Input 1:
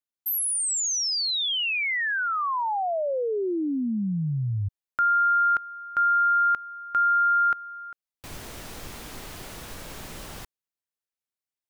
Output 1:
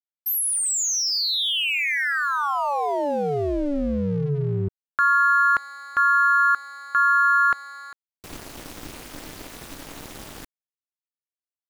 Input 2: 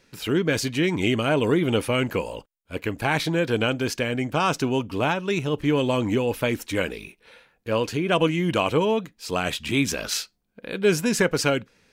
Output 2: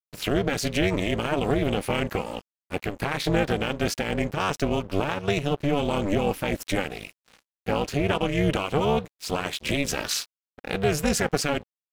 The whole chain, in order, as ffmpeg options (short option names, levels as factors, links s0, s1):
-af "alimiter=limit=0.133:level=0:latency=1:release=194,tremolo=f=290:d=0.947,aeval=exprs='sgn(val(0))*max(abs(val(0))-0.00376,0)':c=same,volume=2.37"